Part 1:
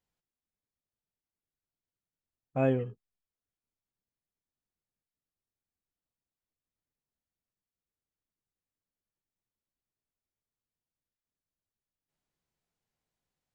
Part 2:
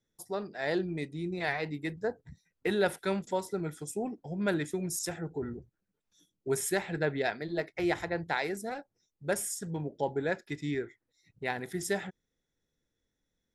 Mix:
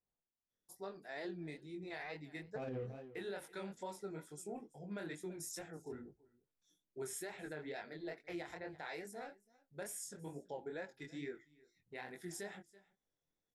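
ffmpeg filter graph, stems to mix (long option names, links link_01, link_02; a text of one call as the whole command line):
ffmpeg -i stem1.wav -i stem2.wav -filter_complex "[0:a]adynamicsmooth=sensitivity=7:basefreq=1100,volume=1.5dB,asplit=2[link_01][link_02];[link_02]volume=-22.5dB[link_03];[1:a]adelay=500,volume=-7dB,asplit=2[link_04][link_05];[link_05]volume=-24dB[link_06];[link_03][link_06]amix=inputs=2:normalize=0,aecho=0:1:331:1[link_07];[link_01][link_04][link_07]amix=inputs=3:normalize=0,equalizer=frequency=76:width_type=o:width=2.8:gain=-7,flanger=delay=20:depth=6.3:speed=2.3,alimiter=level_in=11dB:limit=-24dB:level=0:latency=1:release=75,volume=-11dB" out.wav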